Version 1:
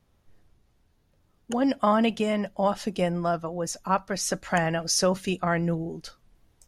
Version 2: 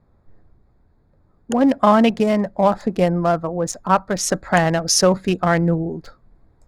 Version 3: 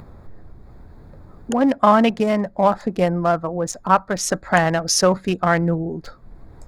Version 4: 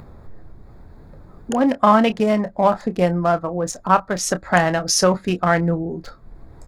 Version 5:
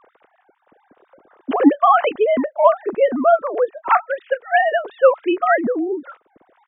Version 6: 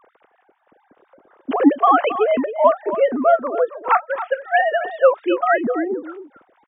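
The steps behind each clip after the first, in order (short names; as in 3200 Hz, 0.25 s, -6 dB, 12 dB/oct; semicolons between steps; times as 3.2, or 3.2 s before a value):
Wiener smoothing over 15 samples; gain +8.5 dB
dynamic EQ 1300 Hz, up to +4 dB, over -26 dBFS, Q 0.79; in parallel at +2.5 dB: upward compressor, threshold -16 dBFS; on the sum: gain -9.5 dB
doubler 28 ms -12 dB
sine-wave speech; gain +1.5 dB
downsampling 8000 Hz; echo 0.271 s -12 dB; gain -1 dB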